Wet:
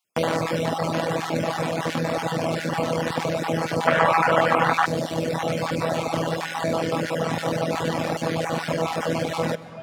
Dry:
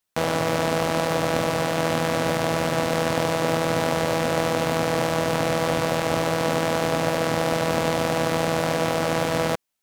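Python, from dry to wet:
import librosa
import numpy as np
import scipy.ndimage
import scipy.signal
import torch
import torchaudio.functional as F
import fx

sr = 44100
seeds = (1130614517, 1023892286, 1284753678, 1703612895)

p1 = fx.spec_dropout(x, sr, seeds[0], share_pct=23)
p2 = fx.rev_freeverb(p1, sr, rt60_s=4.9, hf_ratio=0.5, predelay_ms=100, drr_db=8.0)
p3 = 10.0 ** (-25.0 / 20.0) * np.tanh(p2 / 10.0 ** (-25.0 / 20.0))
p4 = p2 + (p3 * librosa.db_to_amplitude(-4.0))
p5 = fx.curve_eq(p4, sr, hz=(400.0, 1300.0, 4900.0), db=(0, 14, -2), at=(3.87, 4.86))
p6 = fx.dereverb_blind(p5, sr, rt60_s=1.8)
p7 = scipy.signal.sosfilt(scipy.signal.butter(2, 110.0, 'highpass', fs=sr, output='sos'), p6)
p8 = fx.high_shelf(p7, sr, hz=9200.0, db=-8.0)
y = p8 + fx.echo_single(p8, sr, ms=129, db=-24.0, dry=0)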